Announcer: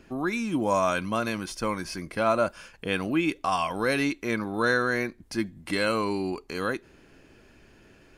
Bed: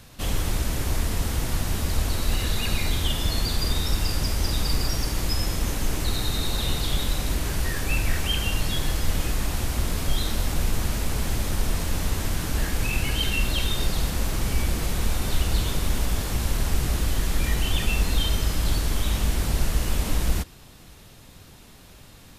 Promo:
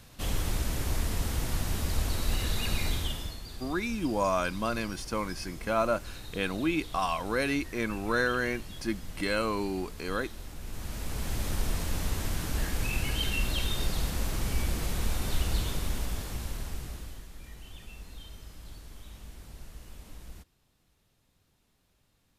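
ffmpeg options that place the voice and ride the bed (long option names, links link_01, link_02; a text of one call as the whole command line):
ffmpeg -i stem1.wav -i stem2.wav -filter_complex "[0:a]adelay=3500,volume=-3.5dB[link_01];[1:a]volume=7.5dB,afade=type=out:start_time=2.88:duration=0.5:silence=0.223872,afade=type=in:start_time=10.62:duration=0.85:silence=0.237137,afade=type=out:start_time=15.49:duration=1.79:silence=0.133352[link_02];[link_01][link_02]amix=inputs=2:normalize=0" out.wav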